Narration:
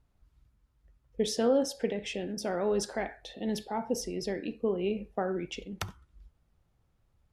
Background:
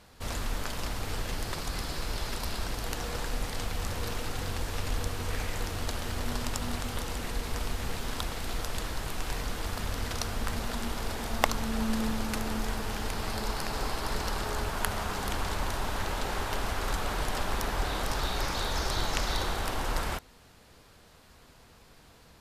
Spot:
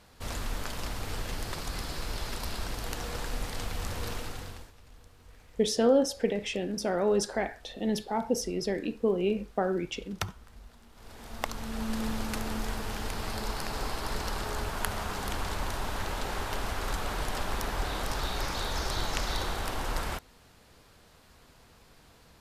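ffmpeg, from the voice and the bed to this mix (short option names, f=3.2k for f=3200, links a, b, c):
-filter_complex "[0:a]adelay=4400,volume=3dB[a];[1:a]volume=20.5dB,afade=t=out:st=4.12:d=0.61:silence=0.0794328,afade=t=in:st=10.92:d=1.23:silence=0.0794328[b];[a][b]amix=inputs=2:normalize=0"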